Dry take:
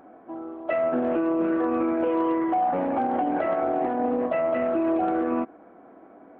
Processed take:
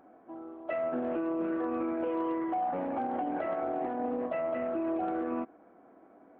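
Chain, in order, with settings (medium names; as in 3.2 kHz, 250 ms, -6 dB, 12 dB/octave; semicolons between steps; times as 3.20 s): 4.54–4.99 s: distance through air 91 m; trim -8 dB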